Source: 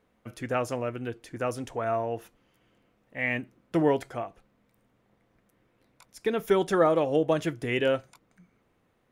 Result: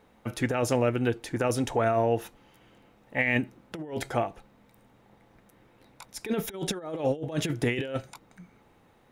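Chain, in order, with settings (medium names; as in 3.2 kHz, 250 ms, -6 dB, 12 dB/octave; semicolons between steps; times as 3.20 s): dynamic bell 950 Hz, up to -7 dB, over -40 dBFS, Q 1.3; compressor with a negative ratio -31 dBFS, ratio -0.5; small resonant body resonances 850/3800 Hz, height 10 dB, ringing for 45 ms; trim +4.5 dB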